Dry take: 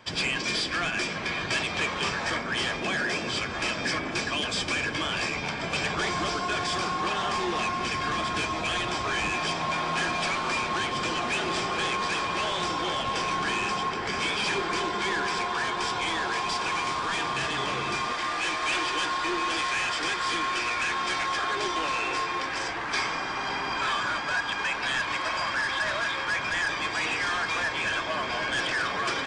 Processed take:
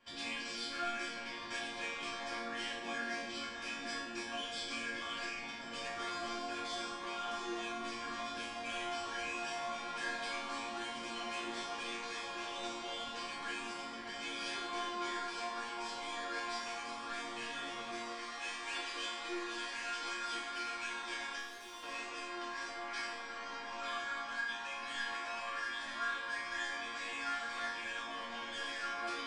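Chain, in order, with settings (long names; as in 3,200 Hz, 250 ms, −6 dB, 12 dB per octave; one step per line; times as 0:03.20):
0:21.38–0:21.83: tube saturation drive 34 dB, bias 0.45
resonators tuned to a chord A#3 minor, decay 0.75 s
level +9.5 dB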